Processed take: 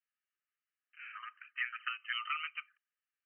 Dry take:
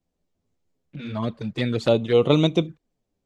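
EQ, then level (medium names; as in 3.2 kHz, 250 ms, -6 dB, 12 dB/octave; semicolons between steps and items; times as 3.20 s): rippled Chebyshev high-pass 1.2 kHz, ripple 6 dB; brick-wall FIR low-pass 3.1 kHz; +2.5 dB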